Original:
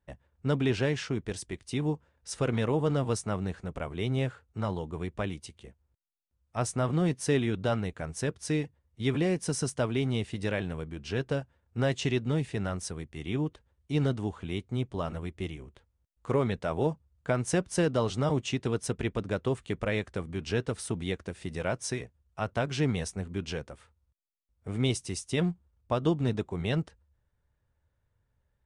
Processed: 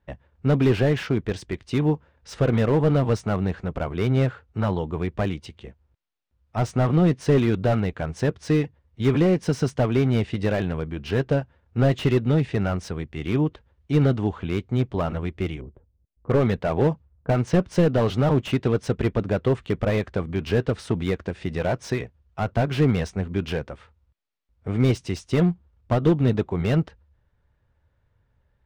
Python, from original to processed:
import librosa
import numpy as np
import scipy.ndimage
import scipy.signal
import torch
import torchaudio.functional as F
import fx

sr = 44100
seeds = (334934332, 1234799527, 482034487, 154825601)

y = scipy.signal.sosfilt(scipy.signal.butter(2, 3800.0, 'lowpass', fs=sr, output='sos'), x)
y = fx.env_lowpass(y, sr, base_hz=390.0, full_db=-25.5, at=(15.61, 17.59))
y = fx.slew_limit(y, sr, full_power_hz=31.0)
y = y * librosa.db_to_amplitude(8.5)